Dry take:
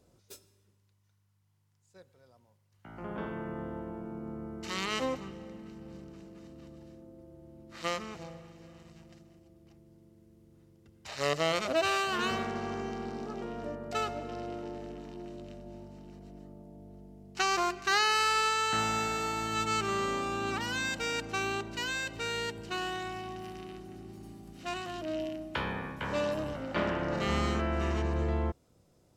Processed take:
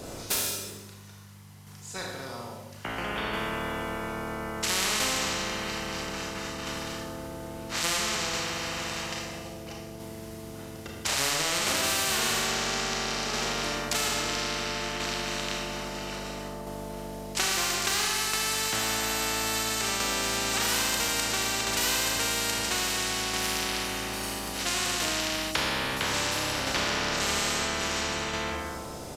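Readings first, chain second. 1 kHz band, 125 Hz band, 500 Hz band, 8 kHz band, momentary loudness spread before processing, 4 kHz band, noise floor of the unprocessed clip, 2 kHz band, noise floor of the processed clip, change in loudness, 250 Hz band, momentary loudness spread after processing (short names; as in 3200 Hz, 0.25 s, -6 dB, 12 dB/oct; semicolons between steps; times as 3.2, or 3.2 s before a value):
+1.5 dB, +0.5 dB, +1.0 dB, +15.0 dB, 22 LU, +9.5 dB, -69 dBFS, +5.5 dB, -42 dBFS, +4.5 dB, +1.5 dB, 13 LU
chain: compressor, threshold -33 dBFS, peak gain reduction 10.5 dB; Schroeder reverb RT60 0.89 s, combs from 26 ms, DRR -1.5 dB; tremolo saw down 0.6 Hz, depth 40%; downsampling 32000 Hz; spectral compressor 4:1; gain +8.5 dB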